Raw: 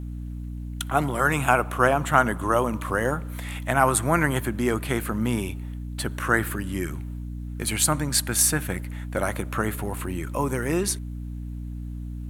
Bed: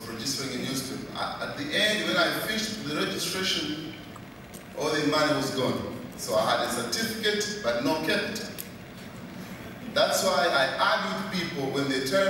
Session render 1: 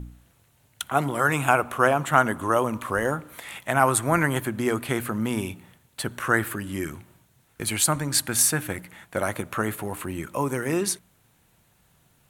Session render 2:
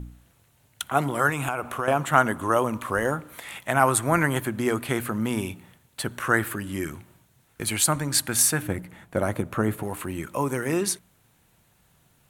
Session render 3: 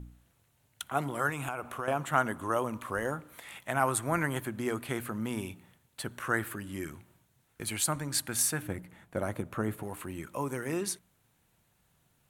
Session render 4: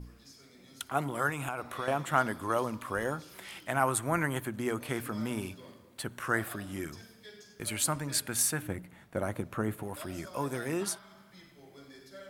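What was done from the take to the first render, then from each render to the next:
de-hum 60 Hz, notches 5
1.29–1.88 s: compression, threshold -23 dBFS; 8.62–9.83 s: tilt shelf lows +5.5 dB, about 760 Hz
trim -8 dB
add bed -25 dB

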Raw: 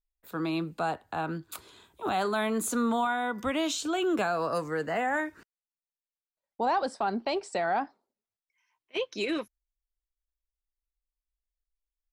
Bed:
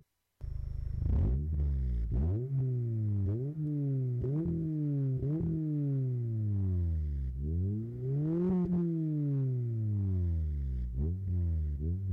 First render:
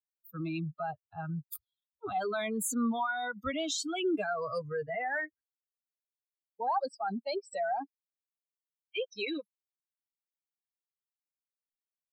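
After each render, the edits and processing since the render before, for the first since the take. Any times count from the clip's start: expander on every frequency bin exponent 3; in parallel at -2 dB: compressor with a negative ratio -43 dBFS, ratio -1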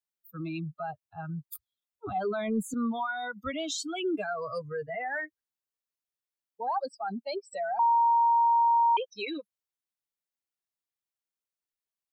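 2.07–2.74 s: tilt EQ -3 dB/octave; 7.79–8.97 s: bleep 933 Hz -19.5 dBFS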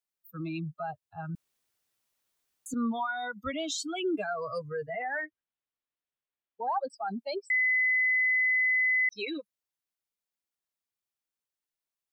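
1.35–2.66 s: room tone; 5.02–6.90 s: steep low-pass 3.7 kHz; 7.50–9.09 s: bleep 2.02 kHz -22.5 dBFS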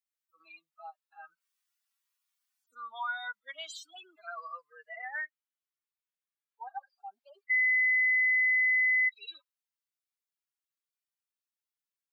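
harmonic-percussive separation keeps harmonic; high-pass 980 Hz 24 dB/octave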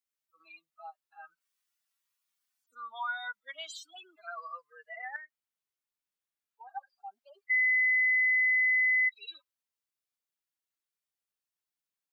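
5.16–6.69 s: compression 4:1, threshold -47 dBFS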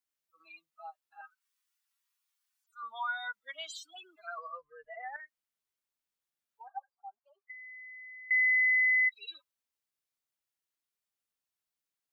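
1.21–2.83 s: steep high-pass 780 Hz 96 dB/octave; 4.38–5.20 s: tilt EQ -5.5 dB/octave; 6.68–8.31 s: auto-wah 360–1100 Hz, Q 2.5, down, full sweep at -25 dBFS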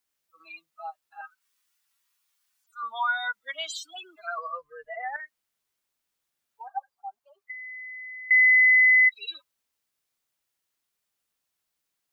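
trim +8.5 dB

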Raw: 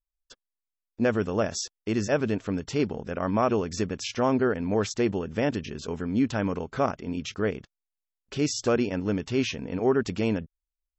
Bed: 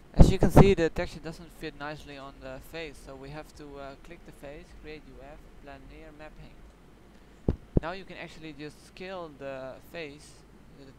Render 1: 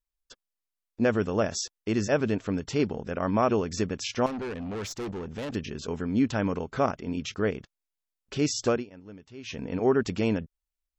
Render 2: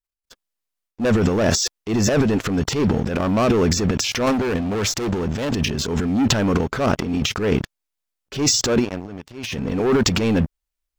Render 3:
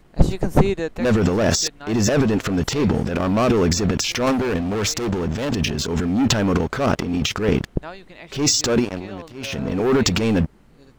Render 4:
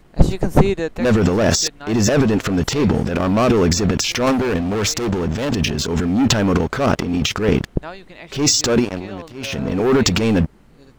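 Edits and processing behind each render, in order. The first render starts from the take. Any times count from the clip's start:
4.26–5.55 s: valve stage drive 31 dB, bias 0.35; 8.69–9.59 s: dip -18.5 dB, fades 0.16 s
waveshaping leveller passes 3; transient shaper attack -7 dB, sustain +11 dB
add bed +0.5 dB
trim +2.5 dB

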